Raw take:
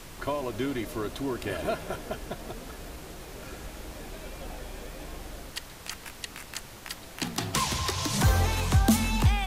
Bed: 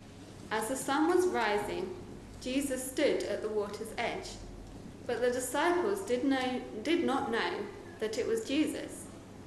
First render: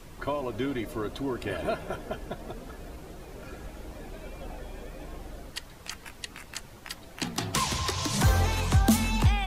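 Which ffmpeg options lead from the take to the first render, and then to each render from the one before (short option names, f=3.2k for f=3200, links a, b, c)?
-af "afftdn=nr=8:nf=-46"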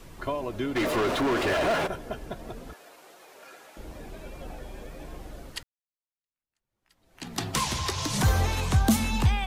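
-filter_complex "[0:a]asplit=3[a][b][c];[a]afade=t=out:st=0.75:d=0.02[d];[b]asplit=2[e][f];[f]highpass=f=720:p=1,volume=34dB,asoftclip=type=tanh:threshold=-18dB[g];[e][g]amix=inputs=2:normalize=0,lowpass=f=2.4k:p=1,volume=-6dB,afade=t=in:st=0.75:d=0.02,afade=t=out:st=1.86:d=0.02[h];[c]afade=t=in:st=1.86:d=0.02[i];[d][h][i]amix=inputs=3:normalize=0,asettb=1/sr,asplit=3[j][k][l];[j]atrim=end=2.734[m];[k]atrim=start=2.73:end=3.77,asetpts=PTS-STARTPTS,afade=t=in:d=0.004:c=qsin,afade=t=out:st=1.036:d=0.004:c=qsin,highpass=650[n];[l]atrim=start=3.766[o];[m][n]acrossfade=d=0.004:c1=hsin:c2=qsin[p];[p][o]acrossfade=d=0.004:c1=qsin:c2=hsin,asplit=2[q][r];[q]atrim=end=5.63,asetpts=PTS-STARTPTS,afade=t=out:st=5.626:d=0.004:c=hsin[s];[r]atrim=start=5.63,asetpts=PTS-STARTPTS,afade=t=in:d=1.74:c=exp[t];[s][t]concat=n=2:v=0:a=1"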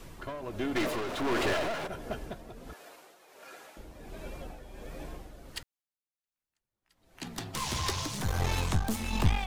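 -af "aeval=exprs='clip(val(0),-1,0.0282)':c=same,tremolo=f=1.4:d=0.58"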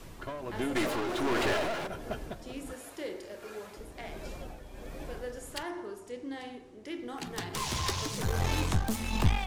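-filter_complex "[1:a]volume=-10dB[a];[0:a][a]amix=inputs=2:normalize=0"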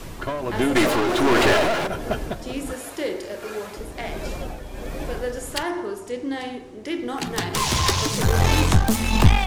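-af "volume=11.5dB,alimiter=limit=-2dB:level=0:latency=1"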